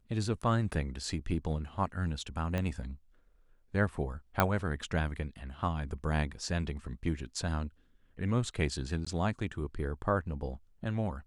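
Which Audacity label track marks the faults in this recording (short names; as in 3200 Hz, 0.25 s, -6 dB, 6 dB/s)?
2.580000	2.580000	pop -20 dBFS
4.400000	4.400000	pop -11 dBFS
9.050000	9.060000	gap 15 ms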